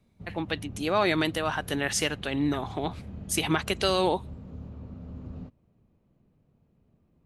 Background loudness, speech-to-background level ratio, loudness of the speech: -43.0 LUFS, 15.0 dB, -28.0 LUFS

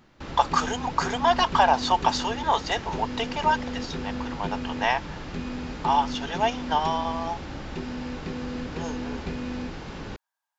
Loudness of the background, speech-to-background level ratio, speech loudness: -34.0 LUFS, 8.5 dB, -25.5 LUFS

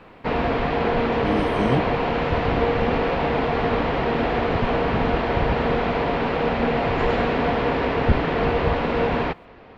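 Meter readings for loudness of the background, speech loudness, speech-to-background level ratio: -22.0 LUFS, -27.0 LUFS, -5.0 dB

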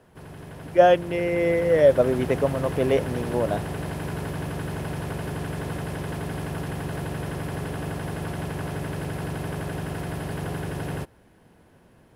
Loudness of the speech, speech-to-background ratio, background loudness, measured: -22.0 LUFS, 10.0 dB, -32.0 LUFS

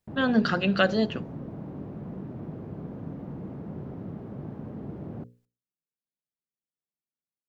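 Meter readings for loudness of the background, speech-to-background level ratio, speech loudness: -39.0 LUFS, 14.5 dB, -24.5 LUFS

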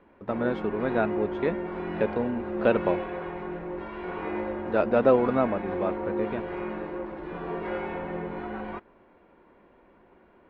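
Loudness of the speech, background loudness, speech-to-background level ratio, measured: -27.5 LUFS, -33.5 LUFS, 6.0 dB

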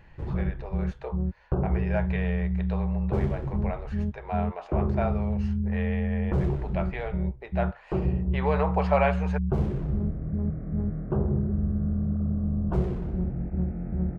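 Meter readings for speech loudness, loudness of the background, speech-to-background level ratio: -33.5 LUFS, -29.0 LUFS, -4.5 dB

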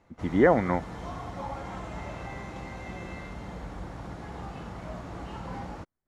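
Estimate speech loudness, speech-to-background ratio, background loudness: -24.5 LUFS, 15.0 dB, -39.5 LUFS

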